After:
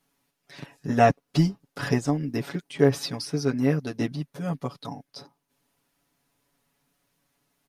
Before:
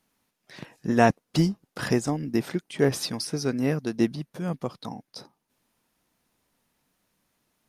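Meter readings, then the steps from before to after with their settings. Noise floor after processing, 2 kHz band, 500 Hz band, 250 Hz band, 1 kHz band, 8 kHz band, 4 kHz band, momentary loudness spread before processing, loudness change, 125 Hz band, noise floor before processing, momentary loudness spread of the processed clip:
-78 dBFS, -1.0 dB, +1.0 dB, -0.5 dB, +2.0 dB, -3.5 dB, -1.5 dB, 19 LU, +0.5 dB, +2.5 dB, -79 dBFS, 18 LU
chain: comb 7.1 ms, depth 97%; dynamic EQ 9800 Hz, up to -6 dB, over -47 dBFS, Q 0.7; gain -2.5 dB

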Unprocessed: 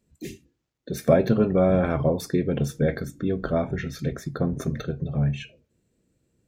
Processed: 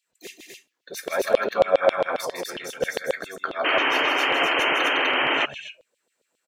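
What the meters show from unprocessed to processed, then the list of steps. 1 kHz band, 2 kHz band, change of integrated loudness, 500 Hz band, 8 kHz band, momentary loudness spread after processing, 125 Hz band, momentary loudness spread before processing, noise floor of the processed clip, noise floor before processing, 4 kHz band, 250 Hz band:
+10.0 dB, +16.0 dB, +2.5 dB, +1.0 dB, +4.5 dB, 13 LU, -24.0 dB, 15 LU, -78 dBFS, -76 dBFS, +18.0 dB, -10.5 dB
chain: loudspeakers at several distances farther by 54 m -6 dB, 86 m -2 dB; LFO high-pass saw down 7.4 Hz 510–3500 Hz; painted sound noise, 3.64–5.46, 250–3200 Hz -23 dBFS; gain +1 dB

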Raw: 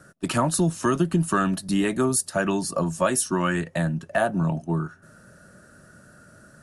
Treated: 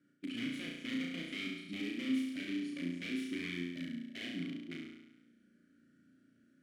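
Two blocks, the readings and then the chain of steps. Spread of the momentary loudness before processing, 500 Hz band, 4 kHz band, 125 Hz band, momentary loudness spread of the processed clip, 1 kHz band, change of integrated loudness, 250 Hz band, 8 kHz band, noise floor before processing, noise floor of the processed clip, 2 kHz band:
5 LU, -25.0 dB, -7.0 dB, -24.5 dB, 8 LU, -34.0 dB, -15.5 dB, -12.5 dB, -30.0 dB, -53 dBFS, -70 dBFS, -12.5 dB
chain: wrapped overs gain 16 dB; vowel filter i; flutter echo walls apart 5.9 m, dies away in 0.96 s; gain -7 dB

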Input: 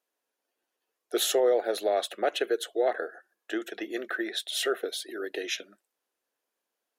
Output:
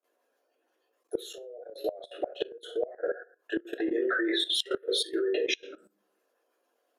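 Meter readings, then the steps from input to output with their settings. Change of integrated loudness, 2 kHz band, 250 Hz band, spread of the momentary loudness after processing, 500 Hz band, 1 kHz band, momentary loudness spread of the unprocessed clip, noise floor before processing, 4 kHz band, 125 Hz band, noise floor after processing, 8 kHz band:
-1.5 dB, 0.0 dB, +2.0 dB, 12 LU, -3.5 dB, -9.0 dB, 11 LU, -85 dBFS, +1.5 dB, n/a, -76 dBFS, -7.5 dB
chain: formant sharpening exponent 2; steep high-pass 160 Hz 48 dB/oct; shoebox room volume 190 m³, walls furnished, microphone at 3.2 m; flipped gate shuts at -13 dBFS, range -24 dB; level quantiser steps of 16 dB; gain +4.5 dB

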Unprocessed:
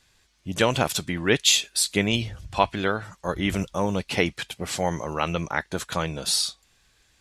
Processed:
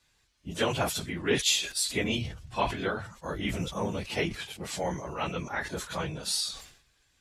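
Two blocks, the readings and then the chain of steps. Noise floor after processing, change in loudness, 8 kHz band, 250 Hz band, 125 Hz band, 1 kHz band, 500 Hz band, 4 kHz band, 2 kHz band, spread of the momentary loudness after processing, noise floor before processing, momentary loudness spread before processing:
-70 dBFS, -6.0 dB, -6.0 dB, -6.5 dB, -6.0 dB, -6.5 dB, -5.5 dB, -6.0 dB, -6.0 dB, 10 LU, -64 dBFS, 10 LU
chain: phase scrambler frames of 50 ms; sustainer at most 90 dB/s; gain -6.5 dB

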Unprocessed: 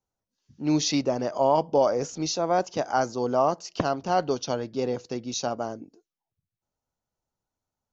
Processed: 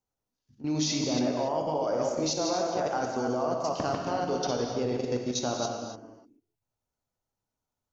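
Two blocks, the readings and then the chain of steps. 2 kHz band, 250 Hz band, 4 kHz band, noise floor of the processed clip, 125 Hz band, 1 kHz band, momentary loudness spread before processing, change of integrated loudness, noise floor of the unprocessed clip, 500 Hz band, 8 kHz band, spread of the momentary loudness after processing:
-3.0 dB, -2.0 dB, -0.5 dB, under -85 dBFS, -1.5 dB, -5.0 dB, 8 LU, -3.0 dB, under -85 dBFS, -3.5 dB, n/a, 5 LU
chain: reverse delay 0.149 s, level -5 dB; level quantiser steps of 15 dB; non-linear reverb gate 0.31 s flat, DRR 2 dB

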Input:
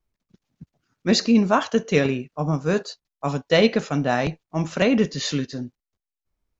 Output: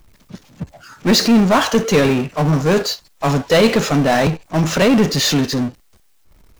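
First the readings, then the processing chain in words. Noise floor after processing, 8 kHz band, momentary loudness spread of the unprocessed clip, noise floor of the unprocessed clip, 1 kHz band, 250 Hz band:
-54 dBFS, n/a, 12 LU, under -85 dBFS, +7.0 dB, +6.5 dB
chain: spectral noise reduction 15 dB; power-law curve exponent 0.5

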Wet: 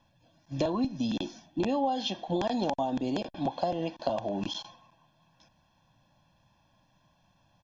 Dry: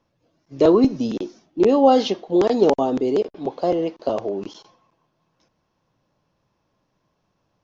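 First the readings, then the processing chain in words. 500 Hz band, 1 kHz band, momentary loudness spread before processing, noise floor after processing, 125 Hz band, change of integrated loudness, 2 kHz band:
-14.5 dB, -8.5 dB, 13 LU, -69 dBFS, -3.5 dB, -12.0 dB, -5.5 dB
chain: bell 3300 Hz +6.5 dB 0.43 oct; comb 1.2 ms, depth 90%; compressor 10:1, threshold -26 dBFS, peak gain reduction 18.5 dB

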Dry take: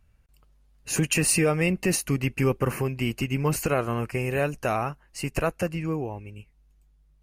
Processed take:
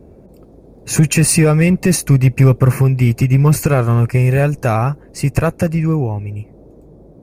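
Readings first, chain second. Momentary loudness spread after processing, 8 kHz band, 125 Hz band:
9 LU, +8.0 dB, +17.0 dB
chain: bell 120 Hz +11 dB 1.2 oct; band noise 45–510 Hz -51 dBFS; in parallel at -4.5 dB: hard clip -16 dBFS, distortion -12 dB; on the sum: notch 2900 Hz, Q 5.6; gain +4 dB

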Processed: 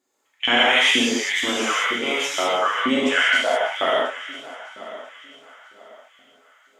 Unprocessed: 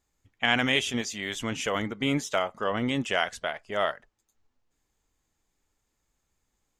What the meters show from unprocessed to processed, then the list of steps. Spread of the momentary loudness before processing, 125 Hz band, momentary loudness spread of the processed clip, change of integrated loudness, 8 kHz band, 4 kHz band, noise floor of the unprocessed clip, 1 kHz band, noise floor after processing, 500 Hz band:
8 LU, under -10 dB, 21 LU, +9.0 dB, +8.5 dB, +11.0 dB, -78 dBFS, +9.0 dB, -65 dBFS, +7.5 dB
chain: multi-head echo 0.33 s, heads first and third, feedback 46%, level -18 dB; LFO high-pass saw up 2.1 Hz 270–3900 Hz; non-linear reverb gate 0.22 s flat, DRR -7 dB

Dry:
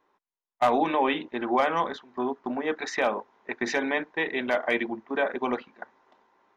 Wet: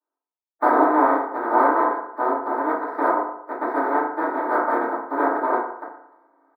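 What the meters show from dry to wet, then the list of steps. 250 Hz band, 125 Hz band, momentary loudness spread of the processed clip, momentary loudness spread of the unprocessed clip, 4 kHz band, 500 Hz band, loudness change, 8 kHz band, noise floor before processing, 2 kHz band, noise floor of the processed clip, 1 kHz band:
+4.5 dB, under -10 dB, 8 LU, 9 LU, under -20 dB, +4.5 dB, +6.0 dB, n/a, under -85 dBFS, +1.5 dB, under -85 dBFS, +9.0 dB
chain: spectral contrast lowered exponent 0.18; HPF 320 Hz 24 dB/oct; gate with hold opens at -56 dBFS; inverse Chebyshev low-pass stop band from 2600 Hz, stop band 40 dB; comb 3.2 ms, depth 45%; FDN reverb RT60 0.75 s, low-frequency decay 0.85×, high-frequency decay 0.5×, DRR -8 dB; gain +2.5 dB

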